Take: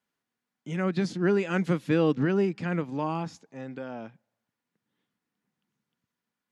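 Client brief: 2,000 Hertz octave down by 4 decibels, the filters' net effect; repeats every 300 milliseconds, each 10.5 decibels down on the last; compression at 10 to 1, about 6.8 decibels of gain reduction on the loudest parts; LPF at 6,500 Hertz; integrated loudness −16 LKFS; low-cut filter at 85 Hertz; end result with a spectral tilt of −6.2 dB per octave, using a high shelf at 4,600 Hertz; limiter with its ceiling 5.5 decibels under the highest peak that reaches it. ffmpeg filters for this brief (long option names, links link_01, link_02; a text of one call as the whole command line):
ffmpeg -i in.wav -af "highpass=85,lowpass=6500,equalizer=frequency=2000:width_type=o:gain=-4.5,highshelf=frequency=4600:gain=-6.5,acompressor=threshold=-26dB:ratio=10,alimiter=limit=-23.5dB:level=0:latency=1,aecho=1:1:300|600|900:0.299|0.0896|0.0269,volume=18dB" out.wav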